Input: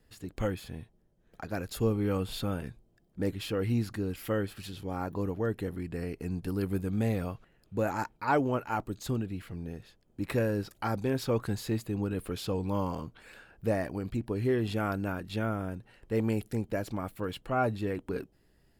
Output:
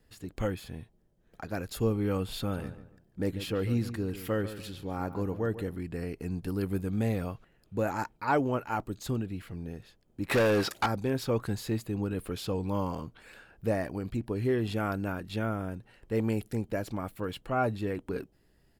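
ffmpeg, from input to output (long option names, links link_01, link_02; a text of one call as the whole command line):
ffmpeg -i in.wav -filter_complex "[0:a]asplit=3[link_01][link_02][link_03];[link_01]afade=type=out:start_time=2.53:duration=0.02[link_04];[link_02]asplit=2[link_05][link_06];[link_06]adelay=143,lowpass=frequency=2400:poles=1,volume=-12dB,asplit=2[link_07][link_08];[link_08]adelay=143,lowpass=frequency=2400:poles=1,volume=0.33,asplit=2[link_09][link_10];[link_10]adelay=143,lowpass=frequency=2400:poles=1,volume=0.33[link_11];[link_05][link_07][link_09][link_11]amix=inputs=4:normalize=0,afade=type=in:start_time=2.53:duration=0.02,afade=type=out:start_time=5.61:duration=0.02[link_12];[link_03]afade=type=in:start_time=5.61:duration=0.02[link_13];[link_04][link_12][link_13]amix=inputs=3:normalize=0,asettb=1/sr,asplit=3[link_14][link_15][link_16];[link_14]atrim=end=10.314[link_17];[link_15]atrim=start=10.31:end=10.86,asetpts=PTS-STARTPTS,afade=type=in:duration=0.004:curve=qsin,afade=type=out:start_time=0.546:duration=0.004:curve=qsin,asplit=2[link_18][link_19];[link_19]highpass=frequency=720:poles=1,volume=25dB,asoftclip=type=tanh:threshold=-17.5dB[link_20];[link_18][link_20]amix=inputs=2:normalize=0,lowpass=frequency=5700:poles=1,volume=-6dB[link_21];[link_16]atrim=start=10.856[link_22];[link_17][link_21]acrossfade=duration=0.004:curve1=hsin:curve2=qsin[link_23];[link_23][link_22]acrossfade=duration=0.004:curve1=qsin:curve2=hsin" out.wav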